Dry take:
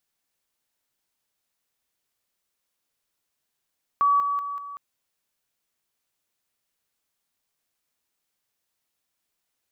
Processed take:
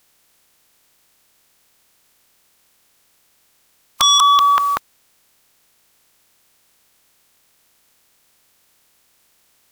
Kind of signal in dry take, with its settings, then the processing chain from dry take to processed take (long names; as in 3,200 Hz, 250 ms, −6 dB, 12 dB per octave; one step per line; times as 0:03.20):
level staircase 1,140 Hz −16.5 dBFS, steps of −6 dB, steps 4, 0.19 s 0.00 s
ceiling on every frequency bin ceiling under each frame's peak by 25 dB
sine wavefolder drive 17 dB, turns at −9.5 dBFS